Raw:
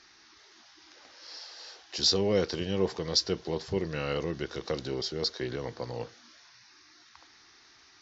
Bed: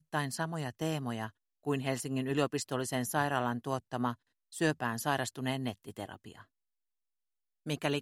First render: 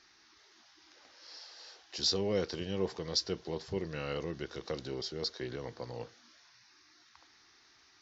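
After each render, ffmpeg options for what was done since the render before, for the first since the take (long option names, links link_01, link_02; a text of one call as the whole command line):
ffmpeg -i in.wav -af "volume=-5.5dB" out.wav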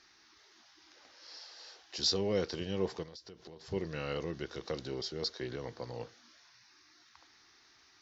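ffmpeg -i in.wav -filter_complex "[0:a]asettb=1/sr,asplit=3[link_01][link_02][link_03];[link_01]atrim=end=3.034[link_04];[link_02]atrim=start=3.03:end=3.72,asetpts=PTS-STARTPTS,afade=type=in:duration=0.004:curve=qsin,afade=type=out:start_time=0.686:duration=0.004:curve=qsin,acompressor=threshold=-46dB:ratio=16:attack=3.2:release=140:knee=1:detection=peak[link_05];[link_03]atrim=start=3.716[link_06];[link_04][link_05]acrossfade=duration=0.004:curve1=hsin:curve2=qsin[link_07];[link_07][link_06]acrossfade=duration=0.004:curve1=qsin:curve2=hsin" out.wav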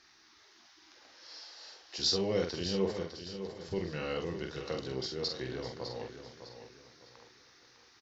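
ffmpeg -i in.wav -filter_complex "[0:a]asplit=2[link_01][link_02];[link_02]adelay=46,volume=-5dB[link_03];[link_01][link_03]amix=inputs=2:normalize=0,aecho=1:1:605|1210|1815|2420:0.316|0.108|0.0366|0.0124" out.wav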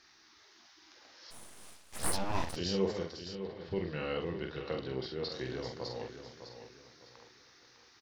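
ffmpeg -i in.wav -filter_complex "[0:a]asplit=3[link_01][link_02][link_03];[link_01]afade=type=out:start_time=1.3:duration=0.02[link_04];[link_02]aeval=exprs='abs(val(0))':channel_layout=same,afade=type=in:start_time=1.3:duration=0.02,afade=type=out:start_time=2.55:duration=0.02[link_05];[link_03]afade=type=in:start_time=2.55:duration=0.02[link_06];[link_04][link_05][link_06]amix=inputs=3:normalize=0,asettb=1/sr,asplit=3[link_07][link_08][link_09];[link_07]atrim=end=3.354[link_10];[link_08]atrim=start=3.35:end=5.32,asetpts=PTS-STARTPTS,afade=type=in:duration=0.004:curve=qsin,afade=type=out:start_time=1.966:duration=0.004:curve=qsin,lowpass=frequency=3900:width=0.5412,lowpass=frequency=3900:width=1.3066[link_11];[link_09]atrim=start=5.316[link_12];[link_10][link_11]acrossfade=duration=0.004:curve1=hsin:curve2=qsin[link_13];[link_13][link_12]acrossfade=duration=0.004:curve1=qsin:curve2=hsin" out.wav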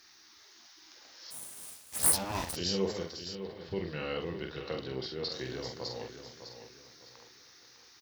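ffmpeg -i in.wav -af "highpass=40,aemphasis=mode=production:type=50fm" out.wav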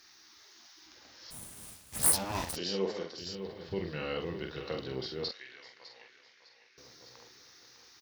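ffmpeg -i in.wav -filter_complex "[0:a]asettb=1/sr,asplit=3[link_01][link_02][link_03];[link_01]atrim=end=0.864[link_04];[link_02]atrim=start=0.86:end=2.02,asetpts=PTS-STARTPTS,afade=type=in:duration=0.004:curve=qsin,afade=type=out:start_time=1.156:duration=0.004:curve=qsin,bass=frequency=250:gain=12,treble=frequency=4000:gain=-3[link_05];[link_03]atrim=start=2.016[link_06];[link_04][link_05]acrossfade=duration=0.004:curve1=hsin:curve2=qsin[link_07];[link_07][link_06]acrossfade=duration=0.004:curve1=qsin:curve2=hsin,asettb=1/sr,asplit=3[link_08][link_09][link_10];[link_08]atrim=end=2.584[link_11];[link_09]atrim=start=2.58:end=3.18,asetpts=PTS-STARTPTS,afade=type=in:duration=0.004:curve=qsin,afade=type=out:start_time=0.596:duration=0.004:curve=qsin,highpass=220,lowpass=4500[link_12];[link_10]atrim=start=3.176[link_13];[link_11][link_12]acrossfade=duration=0.004:curve1=hsin:curve2=qsin[link_14];[link_14][link_13]acrossfade=duration=0.004:curve1=qsin:curve2=hsin,asettb=1/sr,asplit=3[link_15][link_16][link_17];[link_15]atrim=end=5.314[link_18];[link_16]atrim=start=5.31:end=6.78,asetpts=PTS-STARTPTS,afade=type=in:duration=0.004:curve=qsin,afade=type=out:start_time=1.466:duration=0.004:curve=qsin,bandpass=frequency=2200:width_type=q:width=2.2[link_19];[link_17]atrim=start=6.776[link_20];[link_18][link_19]acrossfade=duration=0.004:curve1=hsin:curve2=qsin[link_21];[link_21][link_20]acrossfade=duration=0.004:curve1=qsin:curve2=hsin" out.wav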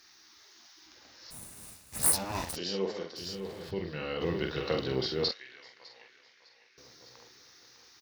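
ffmpeg -i in.wav -filter_complex "[0:a]asettb=1/sr,asplit=3[link_01][link_02][link_03];[link_01]atrim=end=1.164[link_04];[link_02]atrim=start=1.16:end=2.46,asetpts=PTS-STARTPTS,afade=type=in:duration=0.004:curve=qsin,afade=type=out:start_time=1.296:duration=0.004:curve=qsin,bandreject=frequency=3200:width=12[link_05];[link_03]atrim=start=2.456[link_06];[link_04][link_05]acrossfade=duration=0.004:curve1=hsin:curve2=qsin[link_07];[link_07][link_06]acrossfade=duration=0.004:curve1=qsin:curve2=hsin,asettb=1/sr,asplit=3[link_08][link_09][link_10];[link_08]atrim=end=3.164[link_11];[link_09]atrim=start=3.16:end=3.71,asetpts=PTS-STARTPTS,afade=type=in:duration=0.004:curve=qsin,afade=type=out:start_time=0.546:duration=0.004:curve=qsin,aeval=exprs='val(0)+0.5*0.00473*sgn(val(0))':channel_layout=same[link_12];[link_10]atrim=start=3.706[link_13];[link_11][link_12]acrossfade=duration=0.004:curve1=hsin:curve2=qsin[link_14];[link_14][link_13]acrossfade=duration=0.004:curve1=qsin:curve2=hsin,asettb=1/sr,asplit=3[link_15][link_16][link_17];[link_15]atrim=end=4.214[link_18];[link_16]atrim=start=4.21:end=5.34,asetpts=PTS-STARTPTS,afade=type=in:duration=0.004:curve=qsin,afade=type=out:start_time=1.126:duration=0.004:curve=qsin,acontrast=67[link_19];[link_17]atrim=start=5.336[link_20];[link_18][link_19]acrossfade=duration=0.004:curve1=hsin:curve2=qsin[link_21];[link_21][link_20]acrossfade=duration=0.004:curve1=qsin:curve2=hsin" out.wav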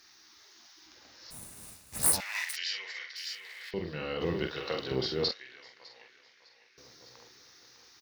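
ffmpeg -i in.wav -filter_complex "[0:a]asettb=1/sr,asplit=3[link_01][link_02][link_03];[link_01]atrim=end=2.204[link_04];[link_02]atrim=start=2.2:end=3.74,asetpts=PTS-STARTPTS,afade=type=in:duration=0.004:curve=qsin,afade=type=out:start_time=1.536:duration=0.004:curve=qsin,highpass=frequency=2000:width_type=q:width=5.5[link_05];[link_03]atrim=start=3.736[link_06];[link_04][link_05]acrossfade=duration=0.004:curve1=hsin:curve2=qsin[link_07];[link_07][link_06]acrossfade=duration=0.004:curve1=qsin:curve2=hsin,asettb=1/sr,asplit=3[link_08][link_09][link_10];[link_08]atrim=end=4.474[link_11];[link_09]atrim=start=4.47:end=4.91,asetpts=PTS-STARTPTS,afade=type=in:duration=0.004:curve=qsin,afade=type=out:start_time=0.436:duration=0.004:curve=qsin,lowshelf=frequency=380:gain=-10.5[link_12];[link_10]atrim=start=4.906[link_13];[link_11][link_12]acrossfade=duration=0.004:curve1=hsin:curve2=qsin[link_14];[link_14][link_13]acrossfade=duration=0.004:curve1=qsin:curve2=hsin" out.wav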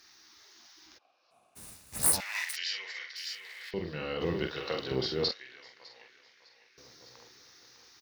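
ffmpeg -i in.wav -filter_complex "[0:a]asplit=3[link_01][link_02][link_03];[link_01]afade=type=out:start_time=0.97:duration=0.02[link_04];[link_02]asplit=3[link_05][link_06][link_07];[link_05]bandpass=frequency=730:width_type=q:width=8,volume=0dB[link_08];[link_06]bandpass=frequency=1090:width_type=q:width=8,volume=-6dB[link_09];[link_07]bandpass=frequency=2440:width_type=q:width=8,volume=-9dB[link_10];[link_08][link_09][link_10]amix=inputs=3:normalize=0,afade=type=in:start_time=0.97:duration=0.02,afade=type=out:start_time=1.55:duration=0.02[link_11];[link_03]afade=type=in:start_time=1.55:duration=0.02[link_12];[link_04][link_11][link_12]amix=inputs=3:normalize=0" out.wav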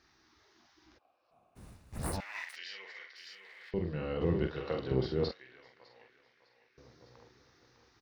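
ffmpeg -i in.wav -af "lowpass=frequency=1000:poles=1,lowshelf=frequency=120:gain=10.5" out.wav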